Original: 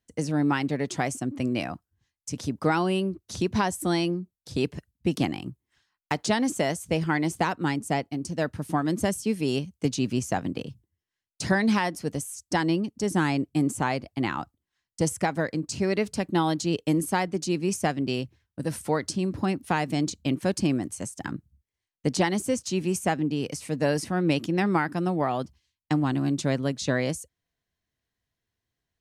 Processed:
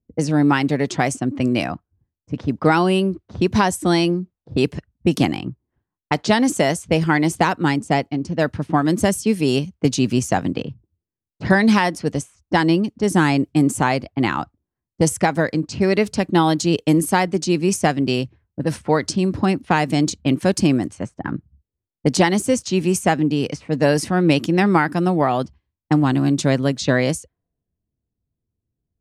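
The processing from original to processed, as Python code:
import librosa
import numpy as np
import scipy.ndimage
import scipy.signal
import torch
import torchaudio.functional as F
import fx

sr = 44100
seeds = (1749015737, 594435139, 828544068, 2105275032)

y = fx.env_lowpass(x, sr, base_hz=330.0, full_db=-23.5)
y = y * 10.0 ** (8.0 / 20.0)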